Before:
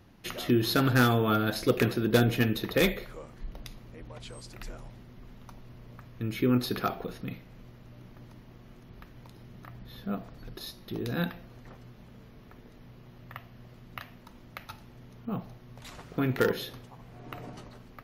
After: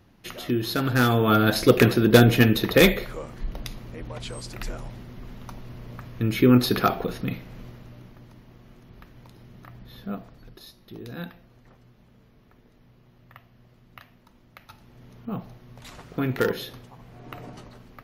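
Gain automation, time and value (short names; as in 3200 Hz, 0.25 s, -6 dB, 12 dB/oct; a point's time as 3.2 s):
0.83 s -0.5 dB
1.46 s +8.5 dB
7.64 s +8.5 dB
8.22 s +1 dB
10.09 s +1 dB
10.64 s -5.5 dB
14.59 s -5.5 dB
15.09 s +2 dB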